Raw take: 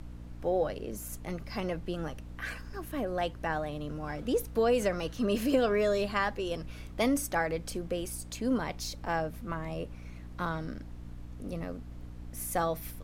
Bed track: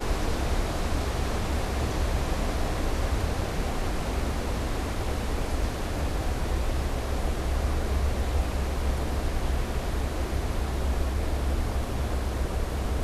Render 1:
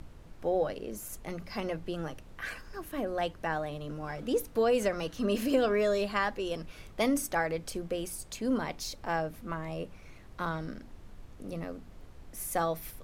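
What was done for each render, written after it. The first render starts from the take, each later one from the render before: notches 60/120/180/240/300 Hz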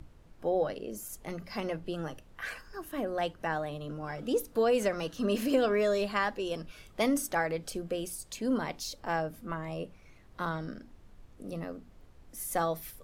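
noise print and reduce 6 dB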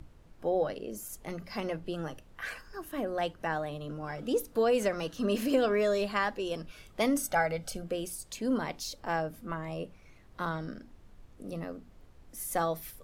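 7.23–7.84 comb 1.4 ms, depth 62%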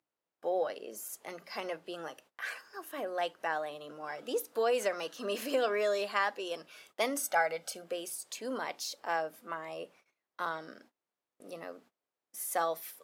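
HPF 490 Hz 12 dB/oct; gate -59 dBFS, range -24 dB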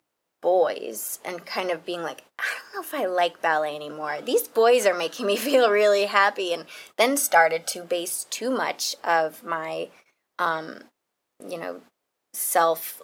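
gain +11.5 dB

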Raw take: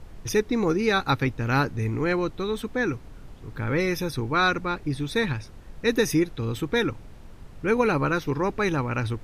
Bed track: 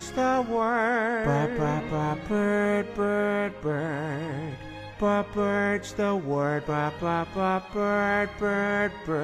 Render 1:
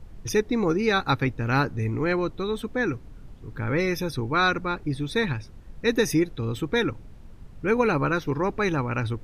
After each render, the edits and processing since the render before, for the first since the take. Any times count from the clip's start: denoiser 6 dB, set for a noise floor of -44 dBFS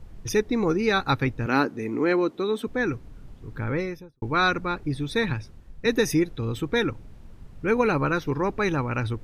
1.46–2.67 resonant high-pass 270 Hz, resonance Q 1.6; 3.56–4.22 studio fade out; 5.3–5.86 three-band expander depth 40%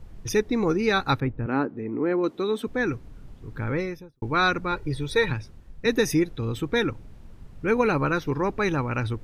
1.2–2.24 tape spacing loss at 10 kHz 45 dB; 4.72–5.31 comb 2.1 ms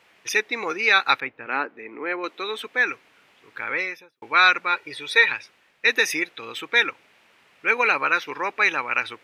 HPF 590 Hz 12 dB/oct; bell 2400 Hz +13.5 dB 1.4 oct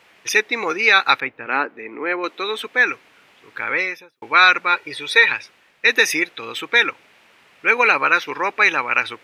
gain +5 dB; limiter -2 dBFS, peak gain reduction 2.5 dB

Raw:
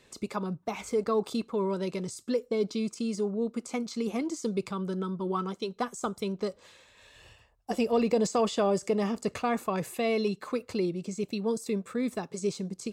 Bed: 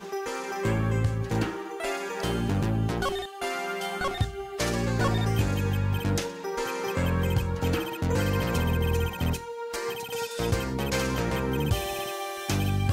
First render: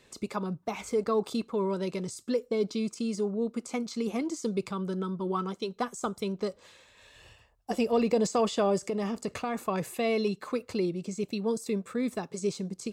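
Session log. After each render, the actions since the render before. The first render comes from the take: 8.85–9.61 compressor 4:1, threshold -27 dBFS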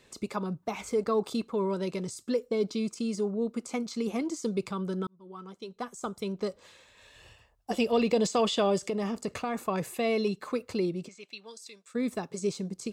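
5.07–6.49 fade in; 7.72–8.92 bell 3300 Hz +8 dB; 11.07–11.94 band-pass 2000 Hz -> 6400 Hz, Q 1.1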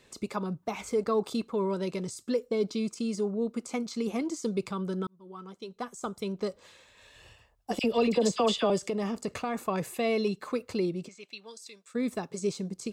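7.79–8.7 dispersion lows, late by 50 ms, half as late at 1500 Hz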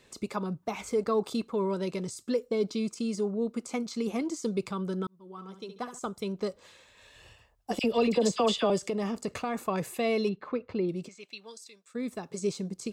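5.31–5.99 flutter echo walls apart 11.9 m, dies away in 0.41 s; 10.29–10.89 air absorption 340 m; 11.64–12.26 gain -4 dB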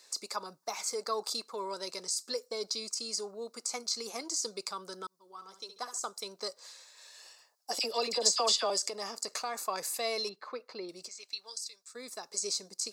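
HPF 720 Hz 12 dB/oct; resonant high shelf 3800 Hz +7 dB, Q 3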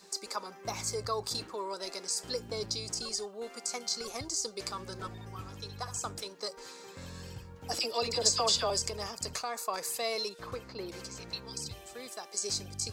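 add bed -20 dB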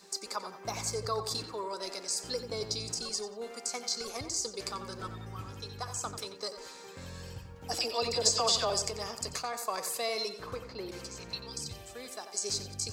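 darkening echo 90 ms, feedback 41%, low-pass 4200 Hz, level -9.5 dB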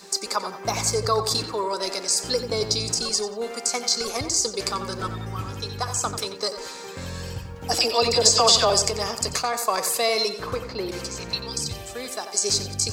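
gain +11 dB; limiter -3 dBFS, peak gain reduction 2.5 dB

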